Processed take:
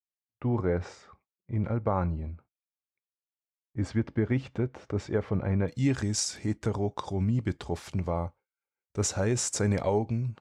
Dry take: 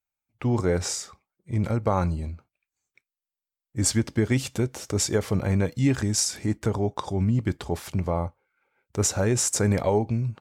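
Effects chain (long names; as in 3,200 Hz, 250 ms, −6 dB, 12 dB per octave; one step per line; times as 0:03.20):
low-pass filter 2,000 Hz 12 dB per octave, from 0:05.68 8,000 Hz
noise gate with hold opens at −41 dBFS
level −4 dB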